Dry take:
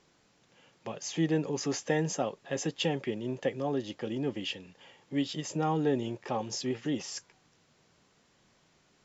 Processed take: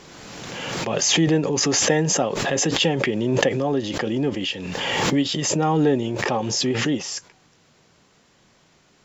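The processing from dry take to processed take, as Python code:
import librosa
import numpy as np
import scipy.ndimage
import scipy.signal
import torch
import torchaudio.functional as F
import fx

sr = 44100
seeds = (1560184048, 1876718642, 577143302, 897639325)

y = fx.pre_swell(x, sr, db_per_s=25.0)
y = F.gain(torch.from_numpy(y), 8.5).numpy()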